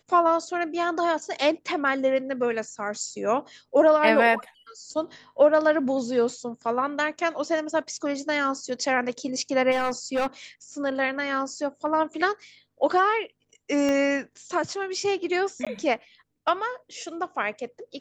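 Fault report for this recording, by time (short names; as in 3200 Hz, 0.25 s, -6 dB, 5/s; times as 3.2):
9.71–10.27 clipped -21 dBFS
13.89 pop -15 dBFS
15.65–15.67 gap 16 ms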